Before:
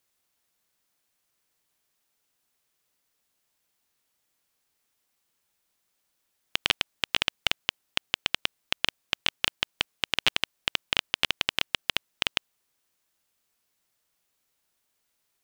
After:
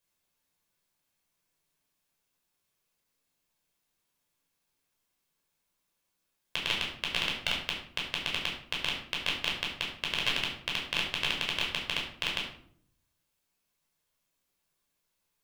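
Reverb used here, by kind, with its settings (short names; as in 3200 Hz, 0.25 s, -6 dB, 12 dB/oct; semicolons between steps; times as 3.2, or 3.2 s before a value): shoebox room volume 860 m³, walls furnished, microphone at 5.3 m; gain -9.5 dB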